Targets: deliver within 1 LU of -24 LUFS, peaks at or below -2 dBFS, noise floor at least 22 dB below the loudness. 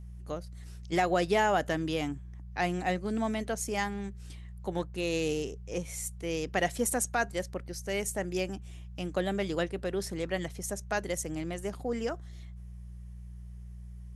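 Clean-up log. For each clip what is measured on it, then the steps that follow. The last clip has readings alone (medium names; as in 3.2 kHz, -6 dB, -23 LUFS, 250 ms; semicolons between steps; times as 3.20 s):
hum 60 Hz; highest harmonic 180 Hz; hum level -41 dBFS; loudness -32.5 LUFS; peak level -14.5 dBFS; loudness target -24.0 LUFS
-> de-hum 60 Hz, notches 3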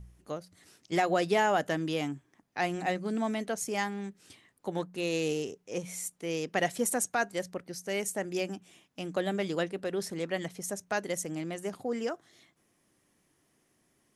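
hum not found; loudness -32.5 LUFS; peak level -14.5 dBFS; loudness target -24.0 LUFS
-> trim +8.5 dB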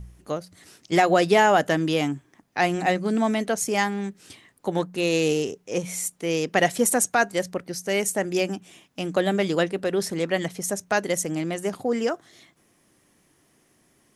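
loudness -24.0 LUFS; peak level -6.0 dBFS; noise floor -64 dBFS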